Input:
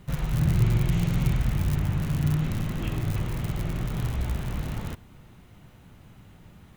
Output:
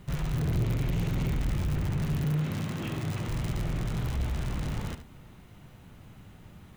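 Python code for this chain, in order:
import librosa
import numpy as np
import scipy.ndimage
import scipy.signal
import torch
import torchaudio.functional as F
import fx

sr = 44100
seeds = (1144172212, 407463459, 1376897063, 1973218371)

y = fx.tracing_dist(x, sr, depth_ms=0.094)
y = fx.highpass(y, sr, hz=120.0, slope=12, at=(2.24, 3.28))
y = 10.0 ** (-24.0 / 20.0) * np.tanh(y / 10.0 ** (-24.0 / 20.0))
y = y + 10.0 ** (-11.5 / 20.0) * np.pad(y, (int(73 * sr / 1000.0), 0))[:len(y)]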